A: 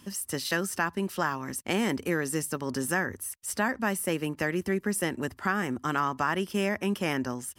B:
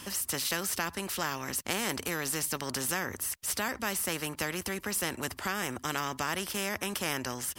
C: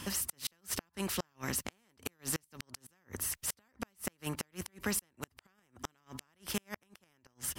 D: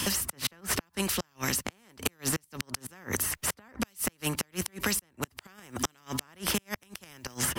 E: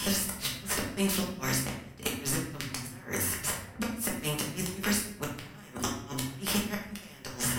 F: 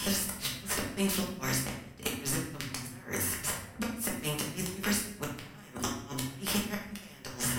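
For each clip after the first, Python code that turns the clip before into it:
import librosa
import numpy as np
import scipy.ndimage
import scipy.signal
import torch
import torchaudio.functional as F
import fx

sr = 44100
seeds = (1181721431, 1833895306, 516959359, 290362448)

y1 = fx.spectral_comp(x, sr, ratio=2.0)
y2 = fx.gate_flip(y1, sr, shuts_db=-20.0, range_db=-39)
y2 = fx.bass_treble(y2, sr, bass_db=5, treble_db=-2)
y3 = fx.band_squash(y2, sr, depth_pct=100)
y3 = y3 * 10.0 ** (6.5 / 20.0)
y4 = fx.room_shoebox(y3, sr, seeds[0], volume_m3=150.0, walls='mixed', distance_m=1.3)
y4 = y4 * 10.0 ** (-4.5 / 20.0)
y5 = fx.echo_feedback(y4, sr, ms=70, feedback_pct=44, wet_db=-18.5)
y5 = y5 * 10.0 ** (-1.5 / 20.0)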